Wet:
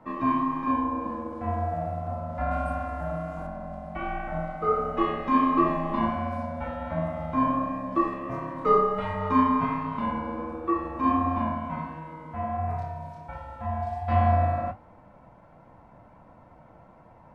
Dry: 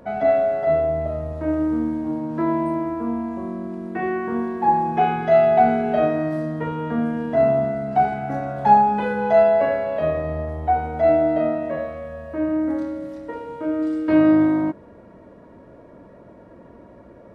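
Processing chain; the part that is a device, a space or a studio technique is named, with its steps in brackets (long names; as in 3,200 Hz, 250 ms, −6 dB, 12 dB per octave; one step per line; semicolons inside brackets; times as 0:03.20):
alien voice (ring modulation 400 Hz; flanger 1.4 Hz, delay 8.2 ms, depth 10 ms, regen −47%)
0:02.51–0:03.47: high-shelf EQ 3,100 Hz +9.5 dB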